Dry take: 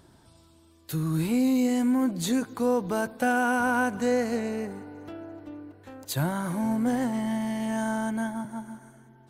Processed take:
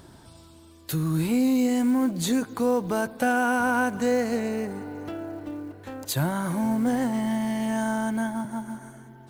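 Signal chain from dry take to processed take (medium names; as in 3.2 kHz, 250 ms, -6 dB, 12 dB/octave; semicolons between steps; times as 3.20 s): in parallel at +2 dB: compression 20:1, threshold -38 dBFS, peak gain reduction 19 dB; on the sum: short-mantissa float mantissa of 4-bit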